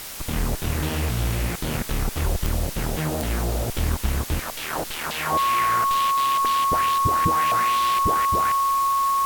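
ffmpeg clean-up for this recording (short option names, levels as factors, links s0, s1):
-af "adeclick=t=4,bandreject=f=1100:w=30,afwtdn=0.018"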